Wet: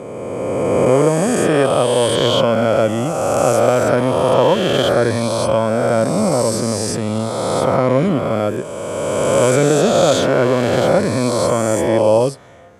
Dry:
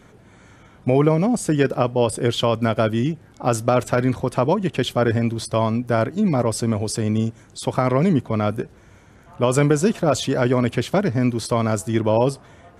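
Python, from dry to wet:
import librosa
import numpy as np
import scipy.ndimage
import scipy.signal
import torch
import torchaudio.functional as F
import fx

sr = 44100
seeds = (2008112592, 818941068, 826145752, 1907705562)

y = fx.spec_swells(x, sr, rise_s=2.76)
y = scipy.signal.sosfilt(scipy.signal.butter(2, 80.0, 'highpass', fs=sr, output='sos'), y)
y = fx.peak_eq(y, sr, hz=540.0, db=8.0, octaves=0.27)
y = F.gain(torch.from_numpy(y), -1.5).numpy()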